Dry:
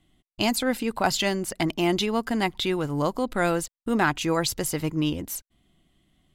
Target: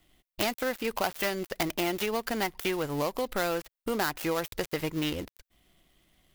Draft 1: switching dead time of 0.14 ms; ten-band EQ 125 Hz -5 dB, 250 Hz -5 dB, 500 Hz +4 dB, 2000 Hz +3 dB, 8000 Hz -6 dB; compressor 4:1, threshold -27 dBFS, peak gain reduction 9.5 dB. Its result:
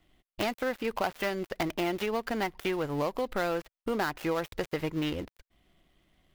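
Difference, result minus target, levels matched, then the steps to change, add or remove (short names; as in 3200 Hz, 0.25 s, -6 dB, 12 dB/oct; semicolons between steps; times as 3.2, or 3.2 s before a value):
8000 Hz band -7.5 dB
add after compressor: high shelf 4700 Hz +12 dB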